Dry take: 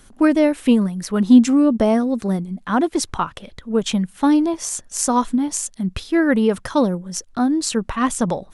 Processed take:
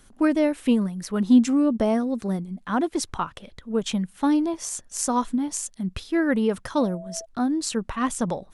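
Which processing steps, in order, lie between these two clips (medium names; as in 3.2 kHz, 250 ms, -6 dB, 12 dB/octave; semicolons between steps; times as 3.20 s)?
6.77–7.24 s: whistle 660 Hz -32 dBFS; trim -5.5 dB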